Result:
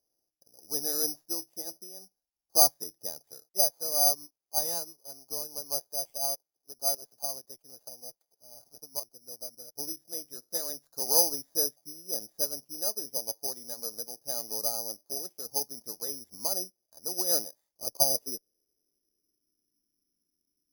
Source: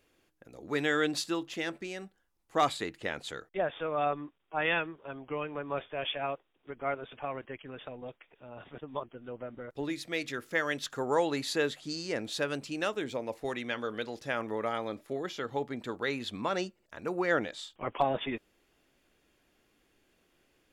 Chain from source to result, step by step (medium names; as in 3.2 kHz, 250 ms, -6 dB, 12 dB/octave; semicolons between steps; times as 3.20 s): single-diode clipper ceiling -18 dBFS; low-pass sweep 730 Hz -> 270 Hz, 17.51–19.88 s; careless resampling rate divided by 8×, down none, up zero stuff; upward expansion 1.5:1, over -37 dBFS; trim -6.5 dB